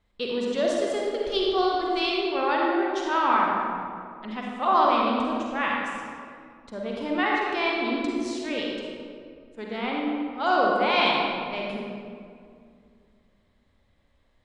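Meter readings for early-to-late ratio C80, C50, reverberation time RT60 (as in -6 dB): 0.0 dB, -2.0 dB, 2.3 s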